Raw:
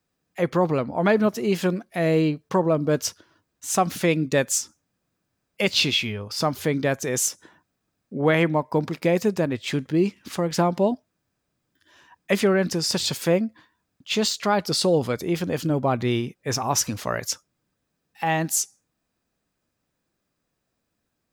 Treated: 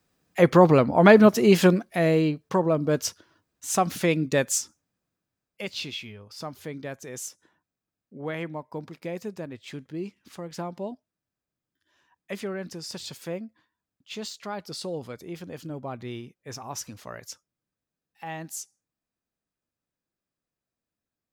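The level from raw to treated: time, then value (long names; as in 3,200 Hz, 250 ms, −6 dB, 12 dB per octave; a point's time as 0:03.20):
0:01.66 +5.5 dB
0:02.20 −2 dB
0:04.56 −2 dB
0:05.78 −13 dB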